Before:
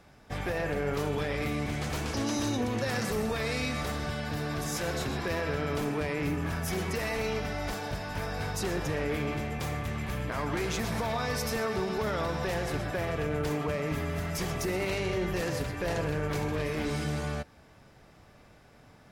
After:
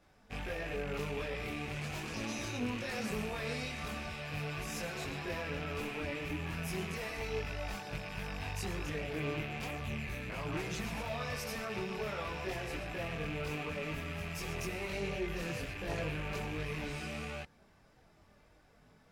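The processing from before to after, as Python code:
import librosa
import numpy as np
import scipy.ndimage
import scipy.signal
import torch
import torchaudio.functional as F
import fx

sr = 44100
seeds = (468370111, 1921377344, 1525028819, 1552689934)

y = fx.rattle_buzz(x, sr, strikes_db=-39.0, level_db=-24.0)
y = fx.chorus_voices(y, sr, voices=4, hz=0.39, base_ms=22, depth_ms=3.3, mix_pct=55)
y = F.gain(torch.from_numpy(y), -5.0).numpy()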